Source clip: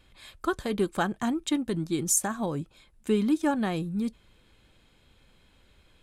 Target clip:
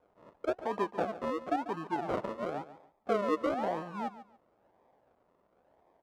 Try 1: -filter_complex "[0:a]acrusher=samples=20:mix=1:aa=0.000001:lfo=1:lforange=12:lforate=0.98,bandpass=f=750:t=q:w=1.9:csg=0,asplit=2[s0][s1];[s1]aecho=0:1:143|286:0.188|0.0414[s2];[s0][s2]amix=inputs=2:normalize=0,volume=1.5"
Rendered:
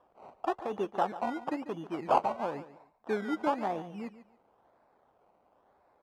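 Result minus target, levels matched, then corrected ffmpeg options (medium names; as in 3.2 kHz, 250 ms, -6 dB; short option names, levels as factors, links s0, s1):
decimation with a swept rate: distortion -7 dB
-filter_complex "[0:a]acrusher=samples=44:mix=1:aa=0.000001:lfo=1:lforange=26.4:lforate=0.98,bandpass=f=750:t=q:w=1.9:csg=0,asplit=2[s0][s1];[s1]aecho=0:1:143|286:0.188|0.0414[s2];[s0][s2]amix=inputs=2:normalize=0,volume=1.5"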